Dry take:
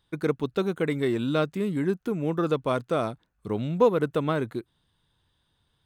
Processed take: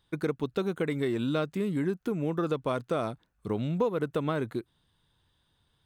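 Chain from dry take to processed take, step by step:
downward compressor 3 to 1, threshold −26 dBFS, peak gain reduction 9 dB

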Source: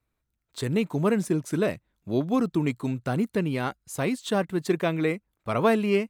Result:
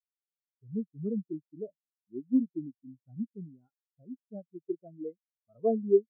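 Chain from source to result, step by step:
in parallel at −9 dB: sample-rate reduction 4,800 Hz
on the sum: every bin expanded away from the loudest bin 4 to 1
level −4.5 dB

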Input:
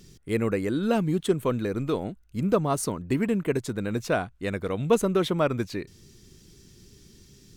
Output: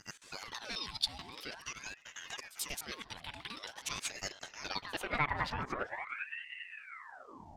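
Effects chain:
slices reordered back to front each 108 ms, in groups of 3
brickwall limiter −21.5 dBFS, peak gain reduction 11.5 dB
echo ahead of the sound 87 ms −18.5 dB
formants moved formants +3 semitones
tape delay 397 ms, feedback 49%, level −10 dB, low-pass 1,300 Hz
band-pass filter sweep 4,200 Hz → 450 Hz, 0:04.48–0:06.33
ring modulator whose carrier an LFO sweeps 1,400 Hz, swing 70%, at 0.46 Hz
level +11.5 dB

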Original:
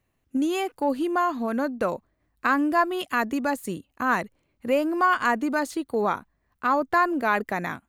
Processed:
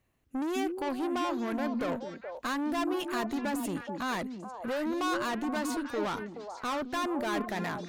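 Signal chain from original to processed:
tube saturation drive 30 dB, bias 0.3
echo through a band-pass that steps 212 ms, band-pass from 260 Hz, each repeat 1.4 octaves, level −1.5 dB

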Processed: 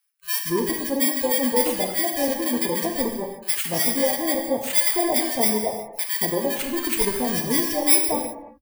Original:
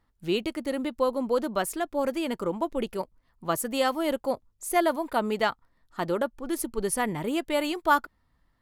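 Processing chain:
samples in bit-reversed order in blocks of 32 samples
reverb reduction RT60 0.94 s
multiband delay without the direct sound highs, lows 230 ms, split 1,300 Hz
reverb whose tail is shaped and stops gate 390 ms falling, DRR 2.5 dB
level +4.5 dB

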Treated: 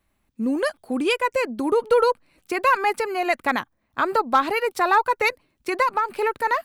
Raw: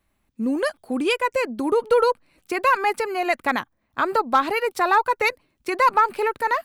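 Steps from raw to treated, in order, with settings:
0:05.82–0:06.22: downward compressor 4 to 1, threshold −19 dBFS, peak gain reduction 6 dB

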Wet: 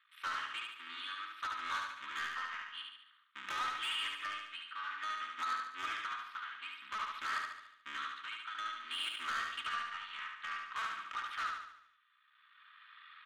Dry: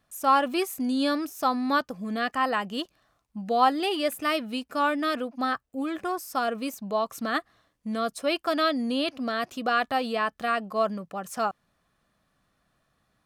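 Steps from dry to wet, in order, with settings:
sub-harmonics by changed cycles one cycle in 3, muted
camcorder AGC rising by 8 dB per second
elliptic band-pass filter 1,200–3,500 Hz, stop band 40 dB
comb filter 3.2 ms, depth 45%
downward compressor 5 to 1, threshold −38 dBFS, peak gain reduction 15.5 dB
amplitude tremolo 0.54 Hz, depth 69%
soft clipping −39 dBFS, distortion −11 dB
repeating echo 72 ms, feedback 51%, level −3.5 dB
on a send at −16 dB: convolution reverb RT60 0.40 s, pre-delay 3 ms
on the sum: level +6 dB

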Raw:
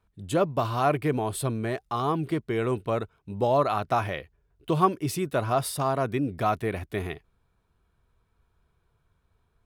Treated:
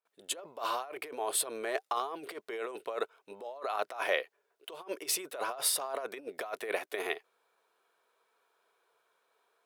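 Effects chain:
compressor whose output falls as the input rises −30 dBFS, ratio −0.5
noise gate with hold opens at −58 dBFS
Chebyshev high-pass filter 470 Hz, order 3

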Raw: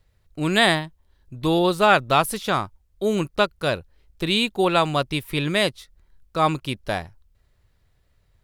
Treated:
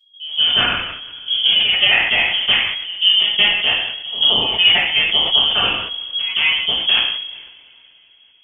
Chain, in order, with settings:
adaptive Wiener filter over 41 samples
noise gate with hold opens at −48 dBFS
low-shelf EQ 110 Hz +11.5 dB
downward compressor 3 to 1, threshold −29 dBFS, peak gain reduction 13.5 dB
transient designer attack +5 dB, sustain −12 dB
on a send: backwards echo 175 ms −15 dB
on the sum: voice inversion scrambler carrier 3,300 Hz
coupled-rooms reverb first 0.59 s, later 3.9 s, from −27 dB, DRR −8.5 dB
level that may fall only so fast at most 51 dB per second
level +3 dB

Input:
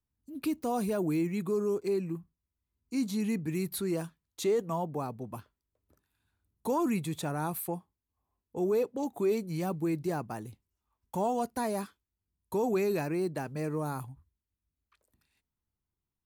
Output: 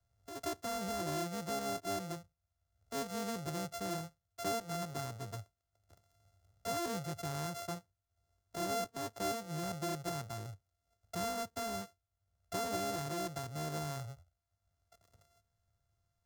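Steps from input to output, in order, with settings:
samples sorted by size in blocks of 64 samples
graphic EQ with 15 bands 100 Hz +11 dB, 250 Hz −6 dB, 2,500 Hz −7 dB, 6,300 Hz +4 dB
multiband upward and downward compressor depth 40%
level −7 dB

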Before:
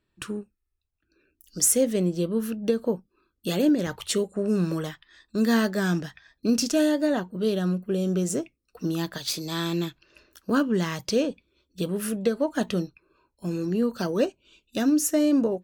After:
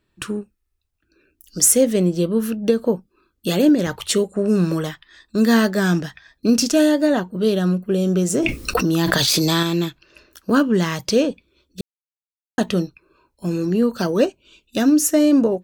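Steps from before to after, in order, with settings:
0:08.34–0:09.63: envelope flattener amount 100%
0:11.81–0:12.58: silence
level +6.5 dB

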